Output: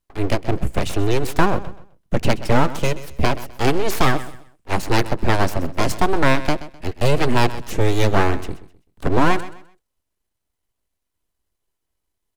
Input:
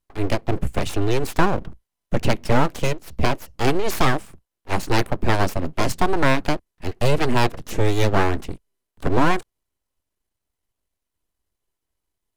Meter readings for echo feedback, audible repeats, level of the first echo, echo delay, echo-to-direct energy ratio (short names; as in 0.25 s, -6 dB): 29%, 2, -15.5 dB, 0.128 s, -15.0 dB